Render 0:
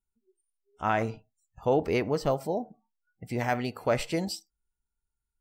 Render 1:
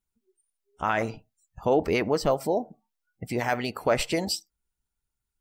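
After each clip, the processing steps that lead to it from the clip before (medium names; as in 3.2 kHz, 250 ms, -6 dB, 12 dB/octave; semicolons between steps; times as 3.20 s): harmonic-percussive split harmonic -9 dB; in parallel at +3 dB: peak limiter -24 dBFS, peak gain reduction 9 dB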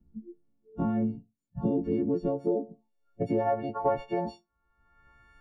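partials quantised in pitch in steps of 4 st; low-pass sweep 230 Hz -> 1.7 kHz, 1.61–5.16 s; three bands compressed up and down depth 100%; trim -4 dB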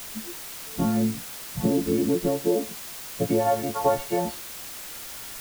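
added noise white -43 dBFS; trim +4.5 dB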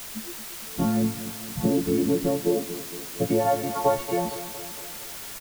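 feedback delay 230 ms, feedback 59%, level -12.5 dB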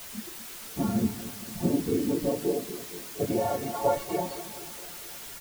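phase randomisation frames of 50 ms; trim -4 dB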